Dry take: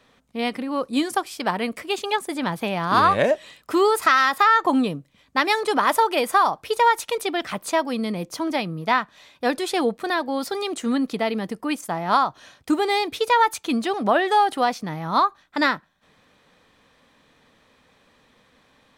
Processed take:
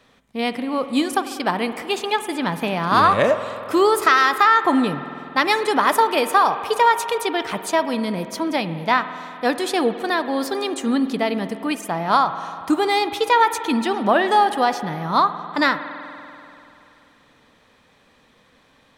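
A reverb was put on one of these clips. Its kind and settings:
spring reverb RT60 2.9 s, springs 48 ms, chirp 60 ms, DRR 10.5 dB
level +2 dB

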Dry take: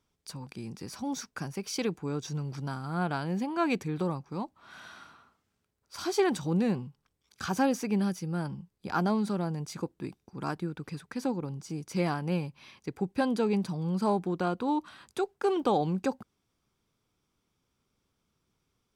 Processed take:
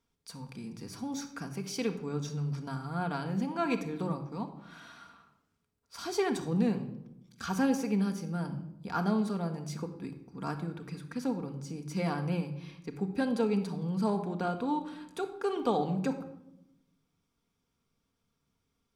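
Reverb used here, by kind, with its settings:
rectangular room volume 2,700 cubic metres, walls furnished, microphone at 1.7 metres
level −4 dB

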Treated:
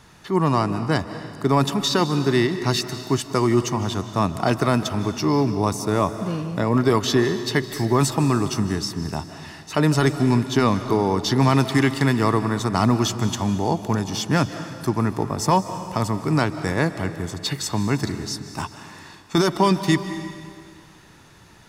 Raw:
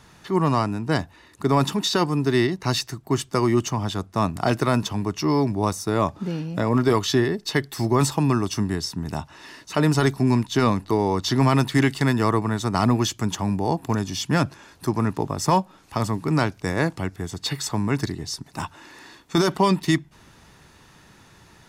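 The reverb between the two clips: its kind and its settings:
comb and all-pass reverb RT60 2 s, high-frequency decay 1×, pre-delay 115 ms, DRR 10.5 dB
level +1 dB

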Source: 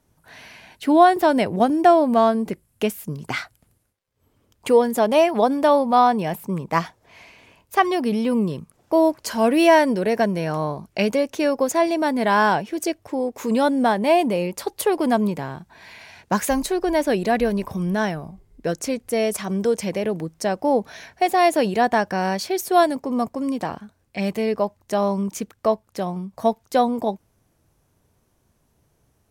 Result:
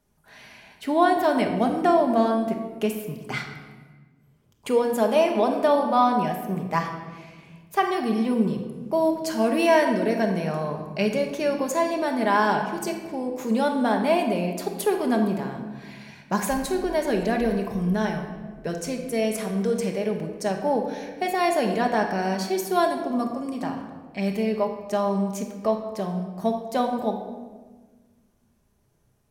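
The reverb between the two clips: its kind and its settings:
rectangular room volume 1,200 cubic metres, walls mixed, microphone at 1.3 metres
level −5.5 dB

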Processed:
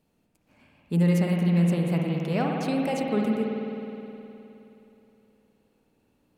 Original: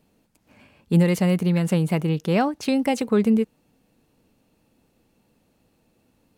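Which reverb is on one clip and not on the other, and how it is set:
spring reverb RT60 3.2 s, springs 52 ms, chirp 70 ms, DRR −1 dB
level −7.5 dB

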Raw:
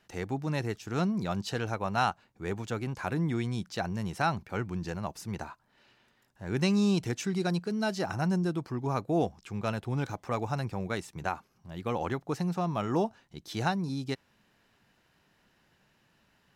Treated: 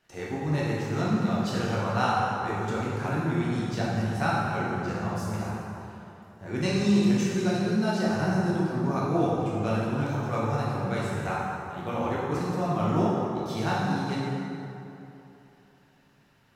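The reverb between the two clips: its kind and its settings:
dense smooth reverb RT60 3 s, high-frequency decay 0.55×, DRR −7.5 dB
level −4 dB

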